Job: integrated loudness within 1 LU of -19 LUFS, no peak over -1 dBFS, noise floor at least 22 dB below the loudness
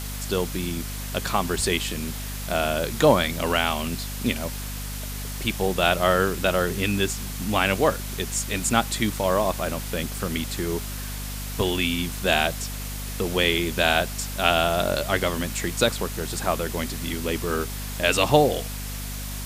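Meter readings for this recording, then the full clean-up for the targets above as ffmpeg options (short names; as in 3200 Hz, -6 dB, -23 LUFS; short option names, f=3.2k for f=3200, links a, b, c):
hum 50 Hz; harmonics up to 250 Hz; hum level -31 dBFS; noise floor -32 dBFS; noise floor target -47 dBFS; loudness -24.5 LUFS; peak -2.5 dBFS; loudness target -19.0 LUFS
-> -af "bandreject=f=50:t=h:w=6,bandreject=f=100:t=h:w=6,bandreject=f=150:t=h:w=6,bandreject=f=200:t=h:w=6,bandreject=f=250:t=h:w=6"
-af "afftdn=nr=15:nf=-32"
-af "volume=5.5dB,alimiter=limit=-1dB:level=0:latency=1"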